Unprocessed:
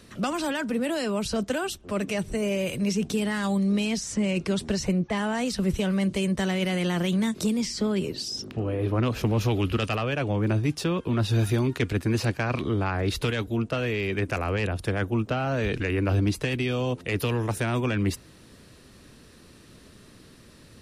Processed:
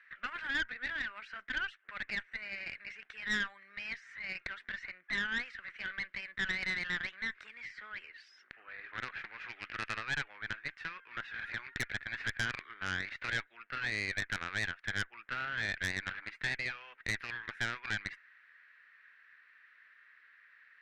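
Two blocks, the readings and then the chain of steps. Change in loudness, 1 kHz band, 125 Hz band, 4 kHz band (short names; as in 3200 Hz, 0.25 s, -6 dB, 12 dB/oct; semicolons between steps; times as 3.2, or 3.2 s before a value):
-11.0 dB, -11.5 dB, -23.5 dB, -8.0 dB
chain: wavefolder -17 dBFS; Butterworth band-pass 1800 Hz, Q 2.7; added harmonics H 4 -10 dB, 5 -9 dB, 8 -17 dB, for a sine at -20 dBFS; gain -5 dB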